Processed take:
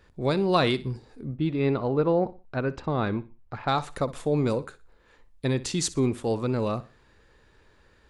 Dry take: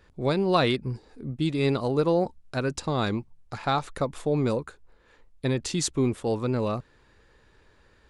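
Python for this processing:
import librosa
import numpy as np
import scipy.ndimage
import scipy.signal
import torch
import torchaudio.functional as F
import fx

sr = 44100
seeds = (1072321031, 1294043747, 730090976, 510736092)

y = fx.lowpass(x, sr, hz=2300.0, slope=12, at=(1.36, 3.68))
y = fx.echo_feedback(y, sr, ms=61, feedback_pct=31, wet_db=-17.5)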